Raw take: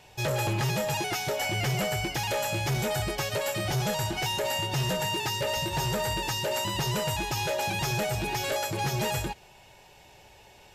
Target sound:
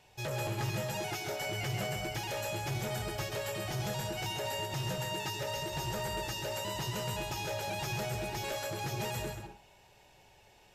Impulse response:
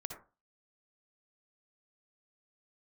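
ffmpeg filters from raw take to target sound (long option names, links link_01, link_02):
-filter_complex "[0:a]asplit=2[link_01][link_02];[1:a]atrim=start_sample=2205,adelay=134[link_03];[link_02][link_03]afir=irnorm=-1:irlink=0,volume=-3dB[link_04];[link_01][link_04]amix=inputs=2:normalize=0,volume=-8.5dB"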